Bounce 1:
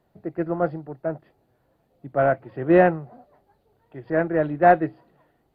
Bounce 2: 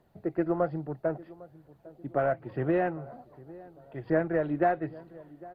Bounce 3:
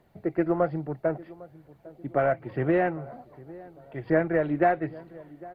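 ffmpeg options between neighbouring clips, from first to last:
ffmpeg -i in.wav -filter_complex "[0:a]acompressor=threshold=-23dB:ratio=8,aphaser=in_gain=1:out_gain=1:delay=3.5:decay=0.26:speed=1.2:type=triangular,asplit=2[link_01][link_02];[link_02]adelay=803,lowpass=frequency=840:poles=1,volume=-19dB,asplit=2[link_03][link_04];[link_04]adelay=803,lowpass=frequency=840:poles=1,volume=0.51,asplit=2[link_05][link_06];[link_06]adelay=803,lowpass=frequency=840:poles=1,volume=0.51,asplit=2[link_07][link_08];[link_08]adelay=803,lowpass=frequency=840:poles=1,volume=0.51[link_09];[link_01][link_03][link_05][link_07][link_09]amix=inputs=5:normalize=0" out.wav
ffmpeg -i in.wav -af "equalizer=frequency=2300:width=3.2:gain=7.5,bandreject=frequency=2500:width=18,volume=3dB" out.wav

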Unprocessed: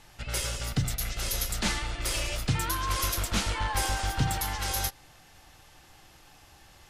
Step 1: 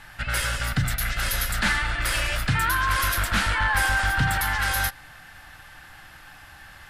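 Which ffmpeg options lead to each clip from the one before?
ffmpeg -i in.wav -filter_complex "[0:a]equalizer=frequency=400:width_type=o:width=0.67:gain=-9,equalizer=frequency=1600:width_type=o:width=0.67:gain=12,equalizer=frequency=6300:width_type=o:width=0.67:gain=-7,asplit=2[link_01][link_02];[link_02]alimiter=limit=-23.5dB:level=0:latency=1:release=29,volume=0.5dB[link_03];[link_01][link_03]amix=inputs=2:normalize=0" out.wav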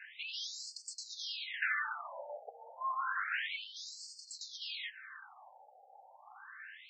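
ffmpeg -i in.wav -af "acompressor=threshold=-26dB:ratio=6,afftfilt=real='re*between(b*sr/1024,600*pow(6100/600,0.5+0.5*sin(2*PI*0.3*pts/sr))/1.41,600*pow(6100/600,0.5+0.5*sin(2*PI*0.3*pts/sr))*1.41)':imag='im*between(b*sr/1024,600*pow(6100/600,0.5+0.5*sin(2*PI*0.3*pts/sr))/1.41,600*pow(6100/600,0.5+0.5*sin(2*PI*0.3*pts/sr))*1.41)':win_size=1024:overlap=0.75,volume=-2dB" out.wav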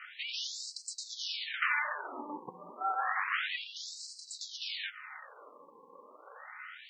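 ffmpeg -i in.wav -af "aeval=exprs='val(0)*sin(2*PI*290*n/s)':channel_layout=same,volume=6.5dB" out.wav

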